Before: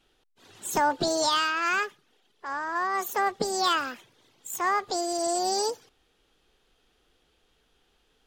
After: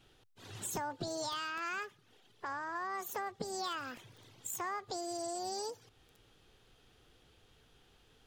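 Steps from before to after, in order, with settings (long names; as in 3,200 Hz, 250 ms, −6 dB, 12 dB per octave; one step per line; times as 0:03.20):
parametric band 110 Hz +13.5 dB 0.84 octaves
downward compressor 4 to 1, threshold −41 dBFS, peak gain reduction 18 dB
feedback echo at a low word length 558 ms, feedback 35%, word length 6 bits, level −13 dB
level +1.5 dB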